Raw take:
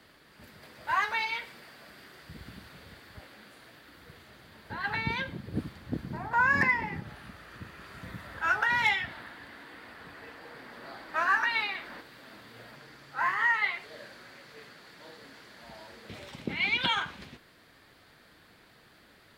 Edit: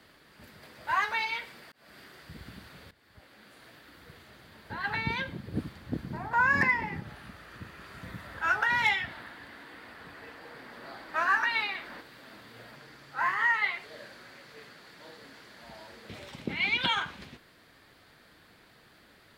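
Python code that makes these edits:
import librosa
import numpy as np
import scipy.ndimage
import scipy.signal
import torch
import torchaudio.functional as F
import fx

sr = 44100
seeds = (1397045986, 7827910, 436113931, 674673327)

y = fx.edit(x, sr, fx.fade_in_span(start_s=1.72, length_s=0.25),
    fx.fade_in_from(start_s=2.91, length_s=0.77, floor_db=-18.0), tone=tone)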